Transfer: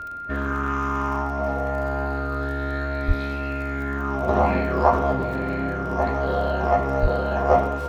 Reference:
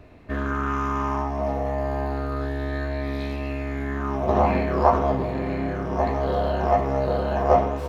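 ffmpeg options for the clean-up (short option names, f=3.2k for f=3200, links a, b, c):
-filter_complex "[0:a]adeclick=t=4,bandreject=f=1.4k:w=30,asplit=3[a][b][c];[a]afade=t=out:st=3.07:d=0.02[d];[b]highpass=f=140:w=0.5412,highpass=f=140:w=1.3066,afade=t=in:st=3.07:d=0.02,afade=t=out:st=3.19:d=0.02[e];[c]afade=t=in:st=3.19:d=0.02[f];[d][e][f]amix=inputs=3:normalize=0,asplit=3[g][h][i];[g]afade=t=out:st=7.01:d=0.02[j];[h]highpass=f=140:w=0.5412,highpass=f=140:w=1.3066,afade=t=in:st=7.01:d=0.02,afade=t=out:st=7.13:d=0.02[k];[i]afade=t=in:st=7.13:d=0.02[l];[j][k][l]amix=inputs=3:normalize=0"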